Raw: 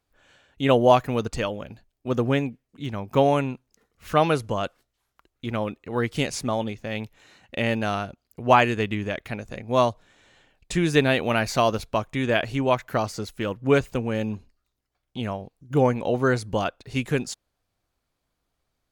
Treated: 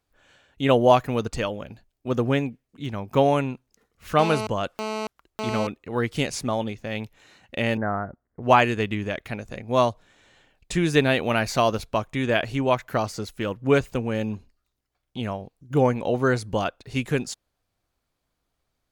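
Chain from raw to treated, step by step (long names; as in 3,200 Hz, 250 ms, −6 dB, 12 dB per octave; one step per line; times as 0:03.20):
0:04.19–0:05.67: phone interference −29 dBFS
0:07.77–0:08.43: Butterworth low-pass 2,000 Hz 96 dB per octave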